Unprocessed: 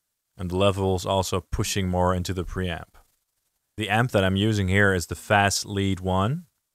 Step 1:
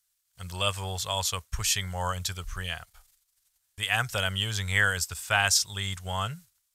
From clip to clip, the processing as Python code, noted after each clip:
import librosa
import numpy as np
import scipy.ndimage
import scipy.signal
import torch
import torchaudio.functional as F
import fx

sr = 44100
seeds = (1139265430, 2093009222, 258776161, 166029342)

y = fx.tone_stack(x, sr, knobs='10-0-10')
y = y * 10.0 ** (4.0 / 20.0)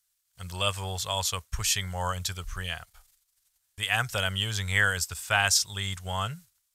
y = x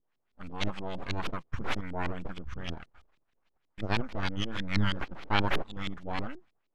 y = np.abs(x)
y = fx.filter_lfo_lowpass(y, sr, shape='saw_up', hz=6.3, low_hz=280.0, high_hz=4000.0, q=1.3)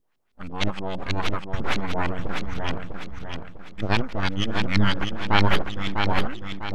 y = fx.echo_feedback(x, sr, ms=650, feedback_pct=39, wet_db=-5.0)
y = y * 10.0 ** (7.0 / 20.0)